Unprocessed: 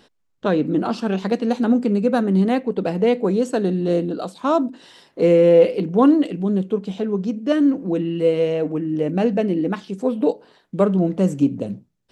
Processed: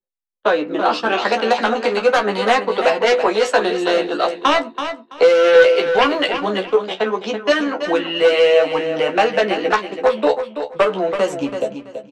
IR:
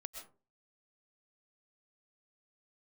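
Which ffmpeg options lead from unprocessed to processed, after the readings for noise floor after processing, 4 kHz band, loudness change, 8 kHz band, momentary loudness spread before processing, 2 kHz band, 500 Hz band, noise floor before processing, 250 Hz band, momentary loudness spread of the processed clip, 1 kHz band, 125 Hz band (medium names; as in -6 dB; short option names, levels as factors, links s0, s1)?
-43 dBFS, +15.0 dB, +2.5 dB, no reading, 9 LU, +15.5 dB, +4.0 dB, -67 dBFS, -7.0 dB, 8 LU, +9.5 dB, under -10 dB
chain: -filter_complex "[0:a]anlmdn=0.398,agate=range=0.1:threshold=0.0501:ratio=16:detection=peak,acrossover=split=390 5000:gain=0.126 1 0.2[s0][s1][s2];[s0][s1][s2]amix=inputs=3:normalize=0,acrossover=split=430|670[s3][s4][s5];[s5]dynaudnorm=f=150:g=17:m=2.82[s6];[s3][s4][s6]amix=inputs=3:normalize=0,aeval=exprs='0.708*sin(PI/2*2.51*val(0)/0.708)':c=same,flanger=delay=7.6:depth=6.1:regen=42:speed=0.34:shape=sinusoidal,acrossover=split=440|4900[s7][s8][s9];[s7]acompressor=threshold=0.0316:ratio=4[s10];[s8]acompressor=threshold=0.158:ratio=4[s11];[s9]acompressor=threshold=0.00891:ratio=4[s12];[s10][s11][s12]amix=inputs=3:normalize=0,asplit=2[s13][s14];[s14]adelay=14,volume=0.562[s15];[s13][s15]amix=inputs=2:normalize=0,asplit=2[s16][s17];[s17]aecho=0:1:331|662|993:0.355|0.0781|0.0172[s18];[s16][s18]amix=inputs=2:normalize=0,adynamicequalizer=threshold=0.0126:dfrequency=6600:dqfactor=0.7:tfrequency=6600:tqfactor=0.7:attack=5:release=100:ratio=0.375:range=2:mode=boostabove:tftype=highshelf,volume=1.26"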